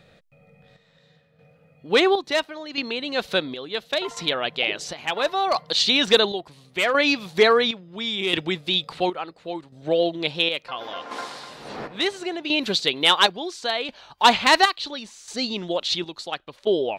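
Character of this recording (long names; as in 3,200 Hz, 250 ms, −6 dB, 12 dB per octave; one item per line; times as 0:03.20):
chopped level 0.72 Hz, depth 60%, duty 55%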